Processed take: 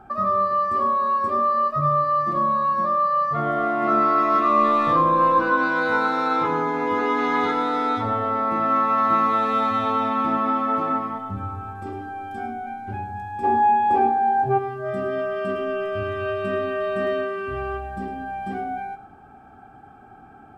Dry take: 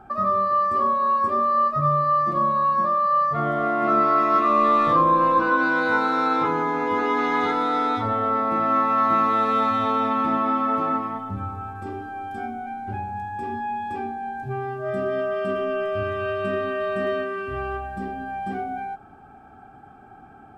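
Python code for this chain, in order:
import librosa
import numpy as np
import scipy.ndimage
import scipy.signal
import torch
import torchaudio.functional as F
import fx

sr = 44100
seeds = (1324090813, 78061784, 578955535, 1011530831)

y = fx.peak_eq(x, sr, hz=620.0, db=14.5, octaves=2.1, at=(13.43, 14.57), fade=0.02)
y = y + 10.0 ** (-13.0 / 20.0) * np.pad(y, (int(105 * sr / 1000.0), 0))[:len(y)]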